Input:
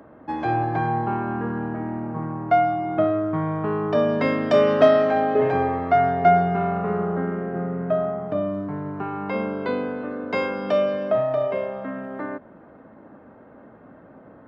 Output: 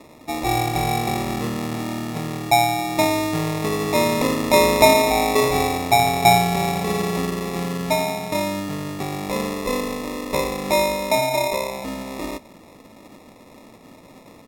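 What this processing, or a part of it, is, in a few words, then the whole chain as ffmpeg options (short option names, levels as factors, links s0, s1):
crushed at another speed: -af "asetrate=55125,aresample=44100,acrusher=samples=23:mix=1:aa=0.000001,asetrate=35280,aresample=44100,volume=1.19"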